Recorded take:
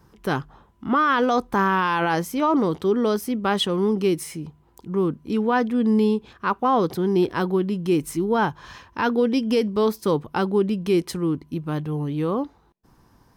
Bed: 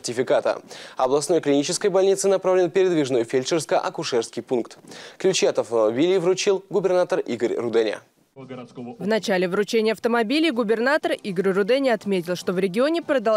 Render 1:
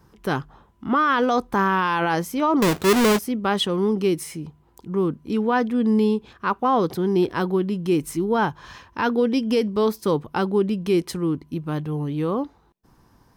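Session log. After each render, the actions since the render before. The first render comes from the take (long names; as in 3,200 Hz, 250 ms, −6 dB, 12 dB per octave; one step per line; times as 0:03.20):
0:02.62–0:03.19: each half-wave held at its own peak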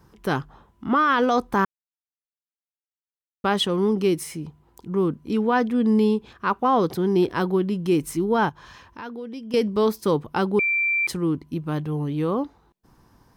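0:01.65–0:03.44: silence
0:08.49–0:09.54: downward compressor 2 to 1, threshold −44 dBFS
0:10.59–0:11.07: beep over 2,350 Hz −19 dBFS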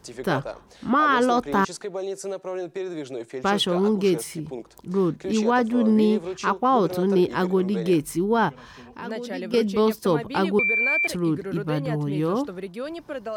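mix in bed −12 dB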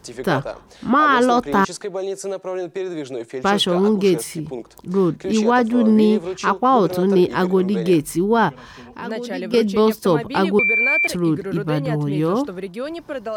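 level +4.5 dB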